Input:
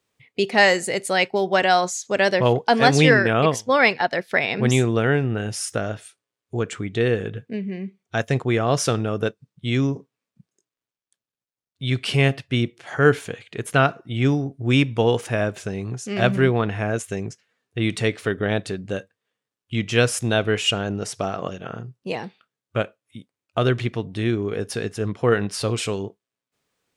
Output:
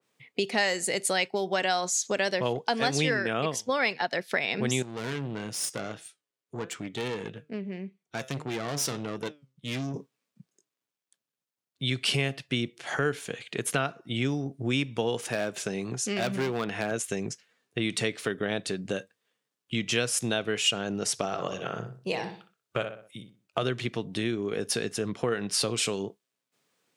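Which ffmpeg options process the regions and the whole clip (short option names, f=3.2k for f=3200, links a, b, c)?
-filter_complex "[0:a]asettb=1/sr,asplit=3[a][b][c];[a]atrim=end=4.824[d];[b]atrim=start=4.82:end=9.94,asetpts=PTS-STARTPTS,afade=t=in:d=0.004:c=qsin,afade=t=out:st=5.116:d=0.004:c=qsin,flanger=delay=5.7:depth=2:regen=86:speed=1.6:shape=triangular,aeval=exprs='(tanh(25.1*val(0)+0.65)-tanh(0.65))/25.1':c=same[e];[c]atrim=start=9.936[f];[d][e]acrossfade=d=0.004:c1=hsin:c2=qsin[g];[g][f]acrossfade=d=0.004:c1=qsin:c2=hsin,asettb=1/sr,asplit=3[h][i][j];[h]atrim=end=15.284[k];[i]atrim=start=15.28:end=16.91,asetpts=PTS-STARTPTS,afade=t=in:d=0.004:c=qsin,afade=t=out:st=1.626:d=0.004:c=qsin,highpass=f=140:p=1,volume=17dB,asoftclip=hard,volume=-17dB[l];[j]atrim=start=16.906[m];[k][l]acrossfade=d=0.004:c1=hsin:c2=qsin[n];[n][m]acrossfade=d=0.004:c1=qsin:c2=hsin,asettb=1/sr,asplit=3[o][p][q];[o]atrim=end=21.254[r];[p]atrim=start=21.25:end=23.63,asetpts=PTS-STARTPTS,afade=t=in:d=0.004:c=qsin,afade=t=out:st=2.376:d=0.004:c=qsin,equalizer=f=240:w=3.3:g=-9,asplit=2[s][t];[t]adelay=62,lowpass=f=2.5k:p=1,volume=-7.5dB,asplit=2[u][v];[v]adelay=62,lowpass=f=2.5k:p=1,volume=0.34,asplit=2[w][x];[x]adelay=62,lowpass=f=2.5k:p=1,volume=0.34,asplit=2[y][z];[z]adelay=62,lowpass=f=2.5k:p=1,volume=0.34[aa];[s][u][w][y][aa]amix=inputs=5:normalize=0,atrim=end_sample=104958[ab];[q]atrim=start=23.626[ac];[r][ab]acrossfade=d=0.004:c1=hsin:c2=qsin[ad];[ad][ac]acrossfade=d=0.004:c1=qsin:c2=hsin,highpass=f=130:w=0.5412,highpass=f=130:w=1.3066,acompressor=threshold=-29dB:ratio=3,adynamicequalizer=threshold=0.00501:dfrequency=2600:dqfactor=0.7:tfrequency=2600:tqfactor=0.7:attack=5:release=100:ratio=0.375:range=3:mode=boostabove:tftype=highshelf,volume=1dB"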